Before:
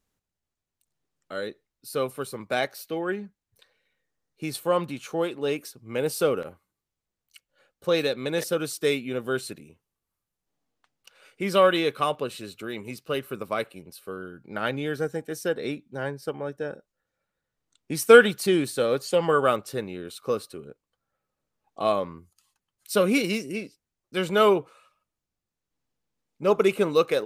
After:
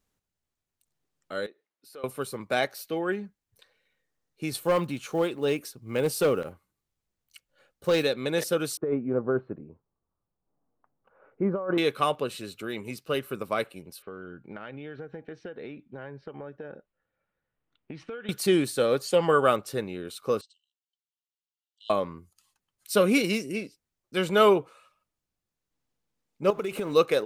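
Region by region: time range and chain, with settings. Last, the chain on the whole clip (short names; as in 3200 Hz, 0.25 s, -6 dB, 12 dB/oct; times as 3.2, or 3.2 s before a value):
1.46–2.04 HPF 190 Hz + tone controls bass -10 dB, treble -9 dB + compressor 2:1, threshold -53 dBFS
4.52–8.03 block floating point 7-bit + low shelf 180 Hz +4.5 dB + hard clip -17.5 dBFS
8.77–11.78 LPF 1200 Hz 24 dB/oct + negative-ratio compressor -26 dBFS
14.02–18.29 LPF 3100 Hz 24 dB/oct + compressor 16:1, threshold -35 dBFS
20.41–21.9 brick-wall FIR band-pass 2700–8600 Hz + tilt -4 dB/oct
26.5–26.94 G.711 law mismatch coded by mu + compressor 12:1, threshold -26 dBFS
whole clip: dry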